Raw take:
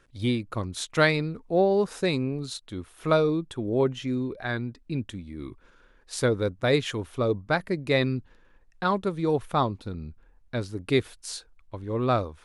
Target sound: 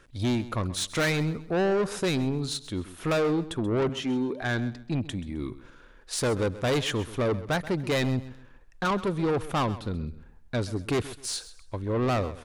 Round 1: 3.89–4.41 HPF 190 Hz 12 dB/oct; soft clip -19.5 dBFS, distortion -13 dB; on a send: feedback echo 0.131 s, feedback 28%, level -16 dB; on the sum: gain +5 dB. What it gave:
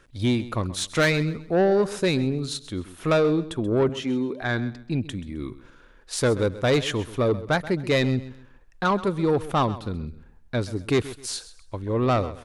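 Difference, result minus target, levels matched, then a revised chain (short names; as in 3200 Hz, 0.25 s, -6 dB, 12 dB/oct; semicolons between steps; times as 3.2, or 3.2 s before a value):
soft clip: distortion -6 dB
3.89–4.41 HPF 190 Hz 12 dB/oct; soft clip -27 dBFS, distortion -7 dB; on a send: feedback echo 0.131 s, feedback 28%, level -16 dB; on the sum: gain +5 dB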